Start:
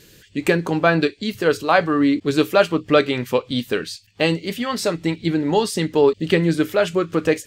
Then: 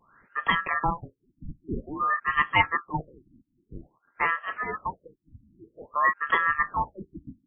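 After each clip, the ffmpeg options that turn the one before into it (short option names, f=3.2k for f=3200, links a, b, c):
-af "aeval=exprs='val(0)*sin(2*PI*1500*n/s)':c=same,afftfilt=real='re*lt(b*sr/1024,300*pow(3400/300,0.5+0.5*sin(2*PI*0.51*pts/sr)))':imag='im*lt(b*sr/1024,300*pow(3400/300,0.5+0.5*sin(2*PI*0.51*pts/sr)))':win_size=1024:overlap=0.75,volume=-3.5dB"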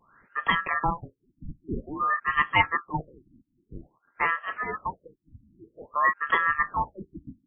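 -af anull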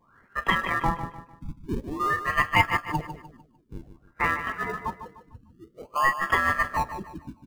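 -filter_complex "[0:a]asplit=2[a][b];[b]acrusher=samples=32:mix=1:aa=0.000001:lfo=1:lforange=19.2:lforate=0.28,volume=-10.5dB[c];[a][c]amix=inputs=2:normalize=0,aecho=1:1:150|300|450|600:0.299|0.107|0.0387|0.0139"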